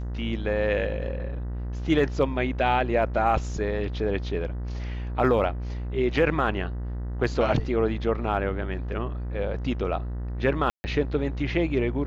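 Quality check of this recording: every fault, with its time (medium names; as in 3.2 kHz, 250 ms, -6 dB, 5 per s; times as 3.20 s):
buzz 60 Hz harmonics 33 -31 dBFS
10.70–10.84 s: dropout 140 ms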